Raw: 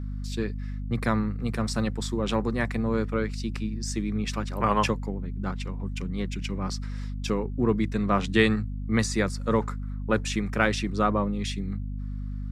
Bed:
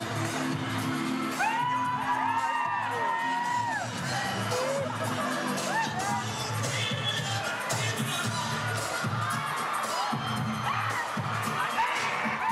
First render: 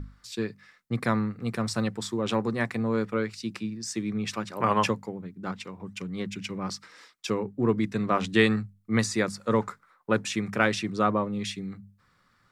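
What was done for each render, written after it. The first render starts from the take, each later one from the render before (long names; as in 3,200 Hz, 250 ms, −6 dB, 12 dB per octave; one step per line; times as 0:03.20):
mains-hum notches 50/100/150/200/250 Hz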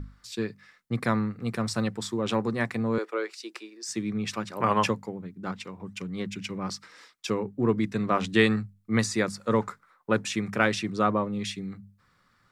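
0:02.98–0:03.89: elliptic high-pass filter 340 Hz, stop band 60 dB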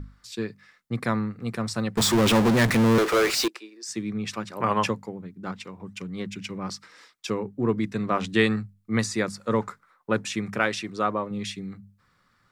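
0:01.97–0:03.48: power curve on the samples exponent 0.35
0:10.59–0:11.31: parametric band 140 Hz −7.5 dB 1.8 octaves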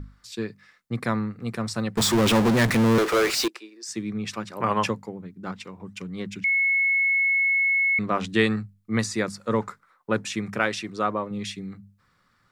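0:06.44–0:07.99: beep over 2,190 Hz −18.5 dBFS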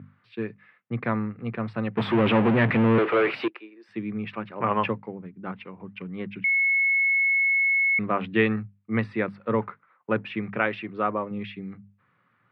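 elliptic band-pass filter 110–2,700 Hz, stop band 40 dB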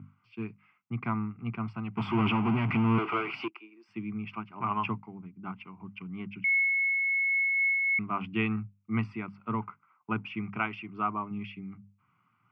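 phaser with its sweep stopped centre 2,600 Hz, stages 8
amplitude modulation by smooth noise, depth 55%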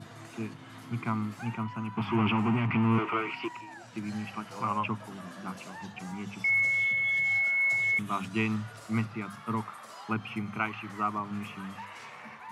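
mix in bed −16.5 dB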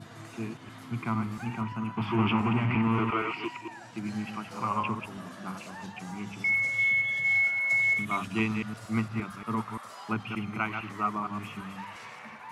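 delay that plays each chunk backwards 115 ms, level −6 dB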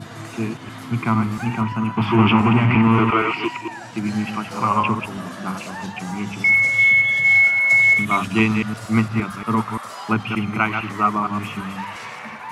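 level +11 dB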